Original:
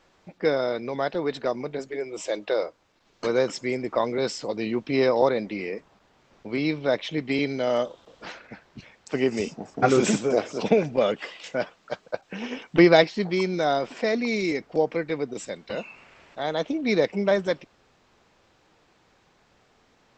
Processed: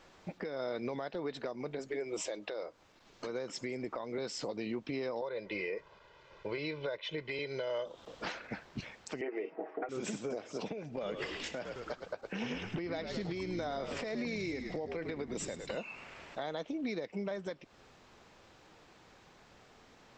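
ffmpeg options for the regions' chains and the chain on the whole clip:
ffmpeg -i in.wav -filter_complex "[0:a]asettb=1/sr,asplit=3[link_01][link_02][link_03];[link_01]atrim=end=5.214[link_04];[link_02]atrim=start=5.21:end=7.86,asetpts=PTS-STARTPTS,afade=type=in:duration=0.004:curve=qsin,afade=type=out:start_time=2.646:duration=0.004:curve=qsin,lowpass=4100,lowshelf=frequency=470:gain=-6.5,aecho=1:1:2:0.77,atrim=end_sample=116865[link_05];[link_03]atrim=start=7.856[link_06];[link_04][link_05]acrossfade=duration=0.004:curve1=hsin:curve2=qsin[link_07];[link_07][link_06]acrossfade=duration=0.004:curve1=qsin:curve2=hsin,asettb=1/sr,asplit=3[link_08][link_09][link_10];[link_08]atrim=end=9.214[link_11];[link_09]atrim=start=9.21:end=9.89,asetpts=PTS-STARTPTS,afade=type=in:duration=0.004:curve=qsin,afade=type=out:start_time=0.676:duration=0.004:curve=qsin,highpass=frequency=320:width=0.5412,highpass=frequency=320:width=1.3066,equalizer=frequency=390:width_type=q:width=4:gain=10,equalizer=frequency=680:width_type=q:width=4:gain=4,equalizer=frequency=1900:width_type=q:width=4:gain=5,lowpass=frequency=2300:width=0.5412,lowpass=frequency=2300:width=1.3066,aecho=1:1:6.3:0.8,atrim=end_sample=29988[link_12];[link_10]atrim=start=9.886[link_13];[link_11][link_12]acrossfade=duration=0.004:curve1=hsin:curve2=qsin[link_14];[link_14][link_13]acrossfade=duration=0.004:curve1=qsin:curve2=hsin,asettb=1/sr,asplit=3[link_15][link_16][link_17];[link_15]atrim=end=10.914[link_18];[link_16]atrim=start=10.91:end=15.77,asetpts=PTS-STARTPTS,afade=type=in:duration=0.004:curve=qsin,afade=type=out:start_time=4.856:duration=0.004:curve=qsin,acompressor=threshold=-29dB:ratio=2:attack=3.2:release=140:knee=1:detection=peak,asplit=7[link_19][link_20][link_21][link_22][link_23][link_24][link_25];[link_20]adelay=106,afreqshift=-67,volume=-9.5dB[link_26];[link_21]adelay=212,afreqshift=-134,volume=-15.3dB[link_27];[link_22]adelay=318,afreqshift=-201,volume=-21.2dB[link_28];[link_23]adelay=424,afreqshift=-268,volume=-27dB[link_29];[link_24]adelay=530,afreqshift=-335,volume=-32.9dB[link_30];[link_25]adelay=636,afreqshift=-402,volume=-38.7dB[link_31];[link_19][link_26][link_27][link_28][link_29][link_30][link_31]amix=inputs=7:normalize=0,atrim=end_sample=214326[link_32];[link_17]atrim=start=15.766[link_33];[link_18][link_32]acrossfade=duration=0.004:curve1=hsin:curve2=qsin[link_34];[link_34][link_33]acrossfade=duration=0.004:curve1=qsin:curve2=hsin,acompressor=threshold=-31dB:ratio=12,alimiter=level_in=6dB:limit=-24dB:level=0:latency=1:release=309,volume=-6dB,volume=2dB" out.wav

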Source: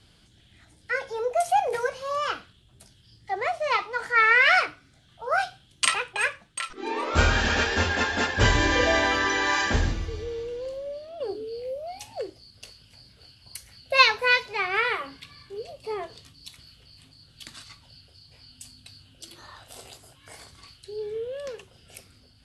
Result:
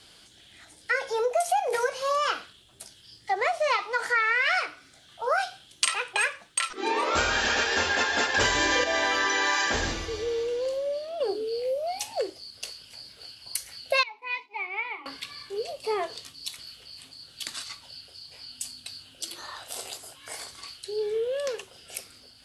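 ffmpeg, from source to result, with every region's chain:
ffmpeg -i in.wav -filter_complex "[0:a]asettb=1/sr,asplit=3[link_01][link_02][link_03];[link_01]atrim=end=8.344[link_04];[link_02]atrim=start=8.34:end=8.84,asetpts=PTS-STARTPTS,afade=type=in:duration=0.004:curve=qsin,afade=type=out:start_time=0.496:duration=0.004:curve=qsin,highshelf=frequency=6200:gain=2.5,acontrast=54[link_05];[link_03]atrim=start=8.836[link_06];[link_04][link_05]acrossfade=duration=0.004:curve1=hsin:curve2=qsin[link_07];[link_07][link_06]acrossfade=duration=0.004:curve1=qsin:curve2=hsin,asettb=1/sr,asplit=3[link_08][link_09][link_10];[link_08]atrim=end=14.034[link_11];[link_09]atrim=start=14.03:end=15.06,asetpts=PTS-STARTPTS,afade=type=in:duration=0.004:curve=qsin,afade=type=out:start_time=1.026:duration=0.004:curve=qsin,agate=range=-33dB:threshold=-38dB:ratio=3:release=100:detection=peak,asplit=3[link_12][link_13][link_14];[link_12]bandpass=frequency=300:width_type=q:width=8,volume=0dB[link_15];[link_13]bandpass=frequency=870:width_type=q:width=8,volume=-6dB[link_16];[link_14]bandpass=frequency=2240:width_type=q:width=8,volume=-9dB[link_17];[link_15][link_16][link_17]amix=inputs=3:normalize=0,lowshelf=frequency=160:gain=-9[link_18];[link_10]atrim=start=15.056[link_19];[link_11][link_18]acrossfade=duration=0.004:curve1=hsin:curve2=qsin[link_20];[link_20][link_19]acrossfade=duration=0.004:curve1=qsin:curve2=hsin,bass=frequency=250:gain=-14,treble=frequency=4000:gain=4,acompressor=threshold=-28dB:ratio=6,volume=6dB" out.wav

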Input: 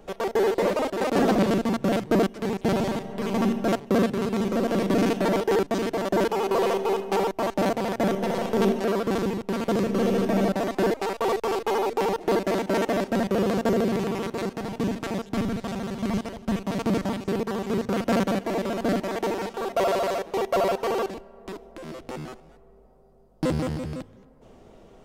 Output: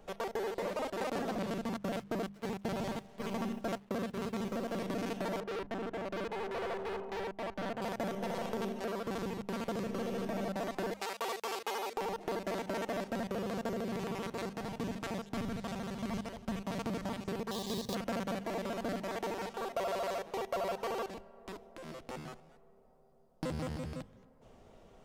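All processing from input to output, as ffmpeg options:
ffmpeg -i in.wav -filter_complex "[0:a]asettb=1/sr,asplit=3[link_01][link_02][link_03];[link_01]atrim=end=1.744[link_04];[link_02]atrim=start=1.74:end=4.8,asetpts=PTS-STARTPTS,afade=type=in:duration=0.004:curve=qsin,afade=type=out:start_time=3.056:duration=0.004:curve=qsin,agate=range=-12dB:threshold=-29dB:ratio=16:release=100:detection=peak,acrusher=bits=8:mix=0:aa=0.5[link_05];[link_03]atrim=start=4.796[link_06];[link_04][link_05]acrossfade=duration=0.004:curve1=hsin:curve2=qsin[link_07];[link_07][link_06]acrossfade=duration=0.004:curve1=qsin:curve2=hsin,asettb=1/sr,asplit=3[link_08][link_09][link_10];[link_08]atrim=end=5.404[link_11];[link_09]atrim=start=5.4:end=7.82,asetpts=PTS-STARTPTS,afade=type=in:duration=0.004:curve=qsin,afade=type=out:start_time=2.416:duration=0.004:curve=qsin,lowpass=1700,asoftclip=type=hard:threshold=-27dB[link_12];[link_10]atrim=start=7.816[link_13];[link_11][link_12]acrossfade=duration=0.004:curve1=hsin:curve2=qsin[link_14];[link_14][link_13]acrossfade=duration=0.004:curve1=qsin:curve2=hsin,asettb=1/sr,asplit=3[link_15][link_16][link_17];[link_15]atrim=end=10.934[link_18];[link_16]atrim=start=10.93:end=11.97,asetpts=PTS-STARTPTS,afade=type=in:duration=0.004:curve=qsin,afade=type=out:start_time=1.036:duration=0.004:curve=qsin,highpass=210,tiltshelf=frequency=1400:gain=-5[link_19];[link_17]atrim=start=11.966[link_20];[link_18][link_19]acrossfade=duration=0.004:curve1=hsin:curve2=qsin[link_21];[link_21][link_20]acrossfade=duration=0.004:curve1=qsin:curve2=hsin,asettb=1/sr,asplit=3[link_22][link_23][link_24];[link_22]atrim=end=17.514[link_25];[link_23]atrim=start=17.51:end=17.95,asetpts=PTS-STARTPTS,afade=type=in:duration=0.004:curve=qsin,afade=type=out:start_time=0.436:duration=0.004:curve=qsin,highshelf=frequency=3000:width_type=q:width=3:gain=8,acrusher=bits=4:mode=log:mix=0:aa=0.000001,asuperstop=centerf=1400:order=8:qfactor=4.3[link_26];[link_24]atrim=start=17.946[link_27];[link_25][link_26]acrossfade=duration=0.004:curve1=hsin:curve2=qsin[link_28];[link_28][link_27]acrossfade=duration=0.004:curve1=qsin:curve2=hsin,bandreject=frequency=50:width_type=h:width=6,bandreject=frequency=100:width_type=h:width=6,bandreject=frequency=150:width_type=h:width=6,bandreject=frequency=200:width_type=h:width=6,acompressor=threshold=-25dB:ratio=6,equalizer=frequency=330:width_type=o:width=0.91:gain=-5.5,volume=-6dB" out.wav

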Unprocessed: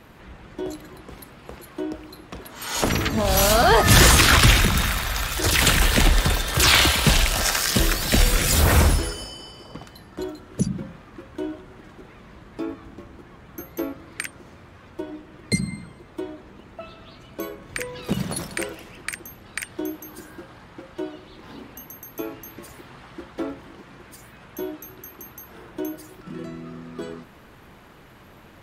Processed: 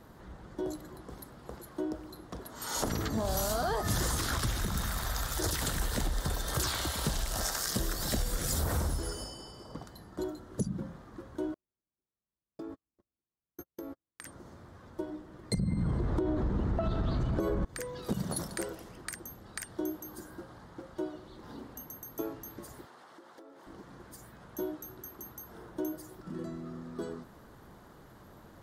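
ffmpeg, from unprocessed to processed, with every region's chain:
ffmpeg -i in.wav -filter_complex "[0:a]asettb=1/sr,asplit=3[link_01][link_02][link_03];[link_01]atrim=end=11.544[link_04];[link_02]atrim=start=11.54:end=14.26,asetpts=PTS-STARTPTS,afade=type=in:duration=0.004:curve=qsin,afade=type=out:start_time=2.716:duration=0.004:curve=qsin,agate=range=-49dB:threshold=-35dB:ratio=16:release=100:detection=peak,acompressor=threshold=-33dB:ratio=6:attack=3.2:release=140:knee=1:detection=peak[link_05];[link_03]atrim=start=14.256[link_06];[link_04][link_05]acrossfade=duration=0.004:curve1=hsin:curve2=qsin[link_07];[link_07][link_06]acrossfade=duration=0.004:curve1=qsin:curve2=hsin,asettb=1/sr,asplit=3[link_08][link_09][link_10];[link_08]atrim=end=15.544[link_11];[link_09]atrim=start=15.54:end=17.65,asetpts=PTS-STARTPTS,afade=type=in:duration=0.004:curve=qsin,afade=type=out:start_time=2.106:duration=0.004:curve=qsin,aemphasis=mode=reproduction:type=bsi,acompressor=threshold=-33dB:ratio=12:attack=3.2:release=140:knee=1:detection=peak,aeval=exprs='0.335*sin(PI/2*7.94*val(0)/0.335)':channel_layout=same[link_12];[link_10]atrim=start=17.646[link_13];[link_11][link_12]acrossfade=duration=0.004:curve1=hsin:curve2=qsin[link_14];[link_14][link_13]acrossfade=duration=0.004:curve1=qsin:curve2=hsin,asettb=1/sr,asplit=3[link_15][link_16][link_17];[link_15]atrim=end=22.854[link_18];[link_16]atrim=start=22.85:end=23.67,asetpts=PTS-STARTPTS,afade=type=in:duration=0.004:curve=qsin,afade=type=out:start_time=0.816:duration=0.004:curve=qsin,highpass=400,acompressor=threshold=-43dB:ratio=16:attack=3.2:release=140:knee=1:detection=peak[link_19];[link_17]atrim=start=23.666[link_20];[link_18][link_19]acrossfade=duration=0.004:curve1=hsin:curve2=qsin[link_21];[link_21][link_20]acrossfade=duration=0.004:curve1=qsin:curve2=hsin,acompressor=threshold=-23dB:ratio=6,equalizer=frequency=2500:width=1.9:gain=-14,volume=-4.5dB" out.wav

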